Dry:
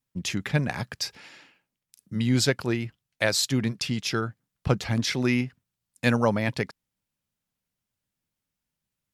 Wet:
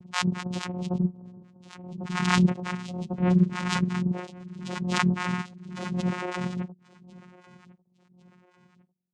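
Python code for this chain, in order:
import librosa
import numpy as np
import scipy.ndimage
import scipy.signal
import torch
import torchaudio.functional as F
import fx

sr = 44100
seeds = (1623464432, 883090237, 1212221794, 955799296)

y = fx.octave_mirror(x, sr, pivot_hz=700.0)
y = fx.spec_topn(y, sr, count=16)
y = fx.vocoder(y, sr, bands=4, carrier='saw', carrier_hz=180.0)
y = fx.echo_feedback(y, sr, ms=1098, feedback_pct=41, wet_db=-21.5)
y = fx.pre_swell(y, sr, db_per_s=41.0)
y = y * 10.0 ** (-2.0 / 20.0)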